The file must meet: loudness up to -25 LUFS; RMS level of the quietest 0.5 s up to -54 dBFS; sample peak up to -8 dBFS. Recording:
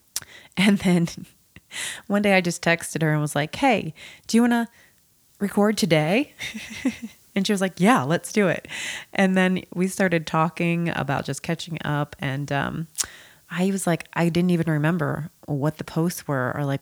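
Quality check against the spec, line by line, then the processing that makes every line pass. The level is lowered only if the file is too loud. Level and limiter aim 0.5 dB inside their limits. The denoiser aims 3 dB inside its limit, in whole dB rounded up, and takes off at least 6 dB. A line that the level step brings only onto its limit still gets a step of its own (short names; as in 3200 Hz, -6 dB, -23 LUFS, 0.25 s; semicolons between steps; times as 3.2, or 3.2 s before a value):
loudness -23.5 LUFS: fail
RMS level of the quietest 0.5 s -59 dBFS: OK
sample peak -4.5 dBFS: fail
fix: gain -2 dB; limiter -8.5 dBFS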